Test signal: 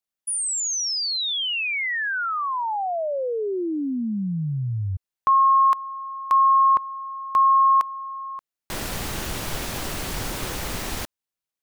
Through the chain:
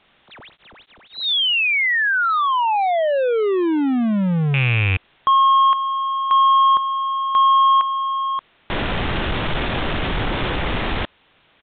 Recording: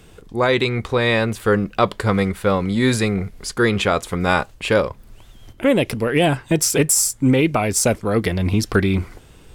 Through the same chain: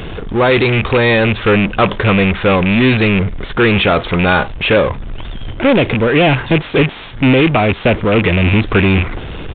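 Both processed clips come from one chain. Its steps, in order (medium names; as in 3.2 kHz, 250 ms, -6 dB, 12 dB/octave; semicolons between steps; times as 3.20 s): rattle on loud lows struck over -23 dBFS, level -12 dBFS; power-law waveshaper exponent 0.5; resampled via 8 kHz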